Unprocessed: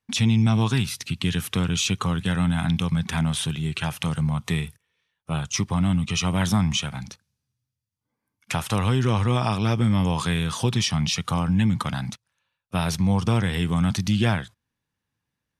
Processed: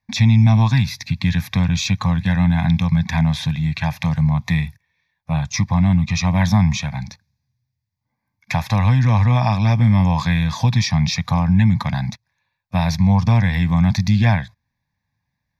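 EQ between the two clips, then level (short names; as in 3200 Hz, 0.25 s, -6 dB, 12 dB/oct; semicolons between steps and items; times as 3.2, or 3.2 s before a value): tone controls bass +10 dB, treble -7 dB; low shelf 350 Hz -10 dB; fixed phaser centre 2000 Hz, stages 8; +8.5 dB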